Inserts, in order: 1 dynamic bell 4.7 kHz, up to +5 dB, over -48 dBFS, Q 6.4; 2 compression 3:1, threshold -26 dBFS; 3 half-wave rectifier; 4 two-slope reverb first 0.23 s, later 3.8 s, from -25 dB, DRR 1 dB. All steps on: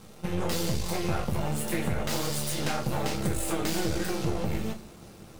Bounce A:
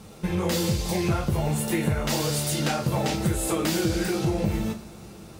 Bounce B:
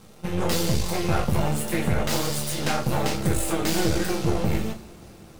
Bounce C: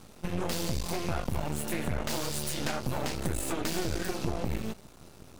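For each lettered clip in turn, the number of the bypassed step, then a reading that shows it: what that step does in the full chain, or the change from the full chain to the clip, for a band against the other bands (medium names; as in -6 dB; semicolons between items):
3, 125 Hz band +1.5 dB; 2, mean gain reduction 4.0 dB; 4, crest factor change +2.0 dB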